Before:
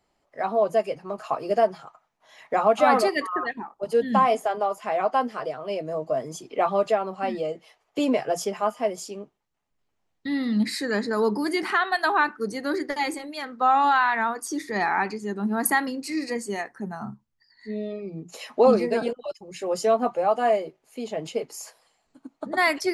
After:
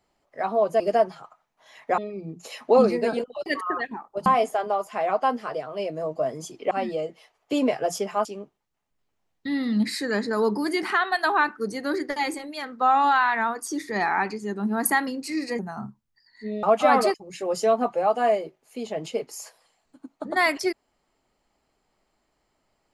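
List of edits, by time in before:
0:00.80–0:01.43: remove
0:02.61–0:03.12: swap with 0:17.87–0:19.35
0:03.92–0:04.17: remove
0:06.62–0:07.17: remove
0:08.71–0:09.05: remove
0:16.39–0:16.83: remove

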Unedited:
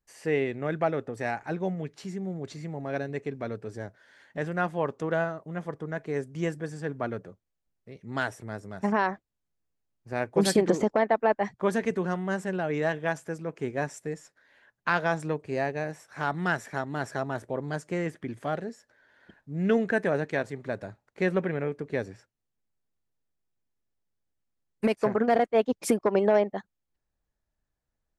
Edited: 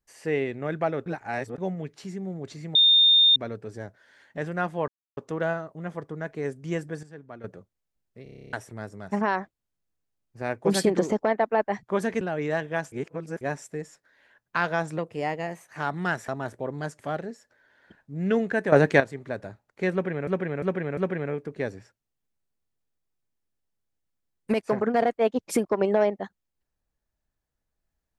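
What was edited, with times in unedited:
0:01.06–0:01.58: reverse
0:02.75–0:03.36: beep over 3,640 Hz −14 dBFS
0:04.88: splice in silence 0.29 s
0:06.74–0:07.15: clip gain −11.5 dB
0:07.94: stutter in place 0.03 s, 10 plays
0:11.92–0:12.53: remove
0:13.24–0:13.73: reverse
0:15.30–0:16.18: play speed 111%
0:16.69–0:17.18: remove
0:17.89–0:18.38: remove
0:20.11–0:20.39: clip gain +10.5 dB
0:21.31–0:21.66: repeat, 4 plays

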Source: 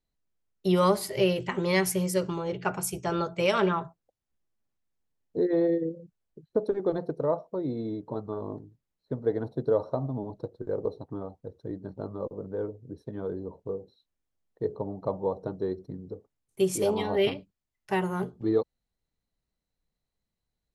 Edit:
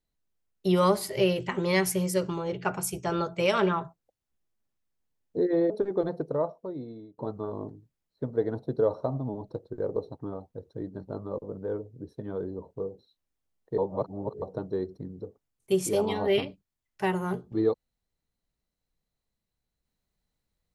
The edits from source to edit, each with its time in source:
0:05.70–0:06.59: remove
0:07.17–0:08.07: fade out, to −22 dB
0:14.67–0:15.31: reverse

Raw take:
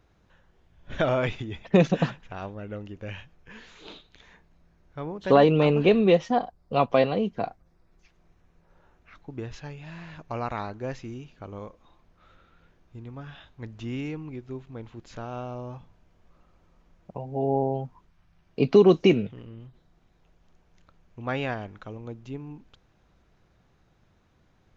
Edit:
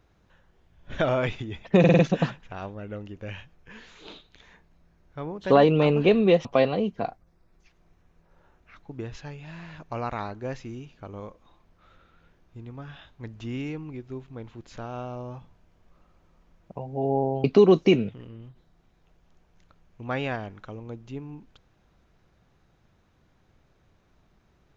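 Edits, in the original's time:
0:01.79: stutter 0.05 s, 5 plays
0:06.25–0:06.84: remove
0:17.83–0:18.62: remove

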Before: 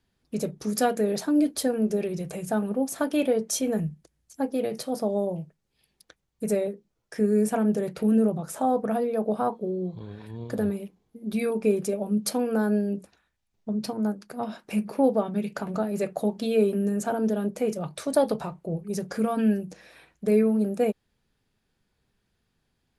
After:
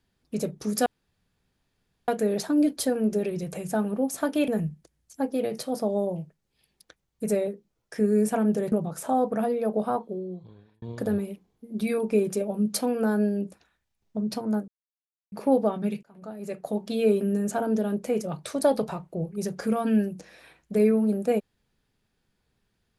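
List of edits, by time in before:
0:00.86: splice in room tone 1.22 s
0:03.26–0:03.68: remove
0:07.92–0:08.24: remove
0:09.34–0:10.34: fade out
0:14.20–0:14.84: silence
0:15.55–0:16.56: fade in

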